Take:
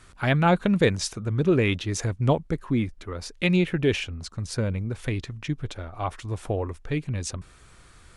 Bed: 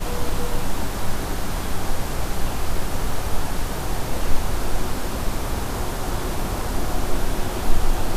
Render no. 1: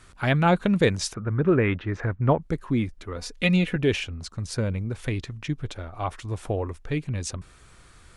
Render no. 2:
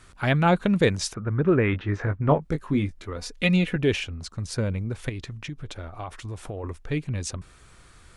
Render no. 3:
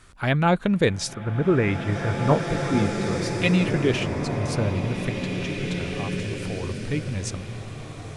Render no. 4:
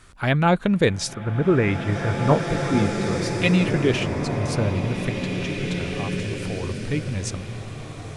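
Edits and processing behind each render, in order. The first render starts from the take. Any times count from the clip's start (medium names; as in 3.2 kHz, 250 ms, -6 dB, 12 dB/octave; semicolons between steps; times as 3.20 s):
1.14–2.42 s: resonant low-pass 1.6 kHz, resonance Q 1.9; 3.16–3.76 s: comb 4.1 ms
1.71–3.10 s: doubling 20 ms -7 dB; 5.09–6.64 s: compression, threshold -30 dBFS
swelling reverb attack 2310 ms, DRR 3 dB
trim +1.5 dB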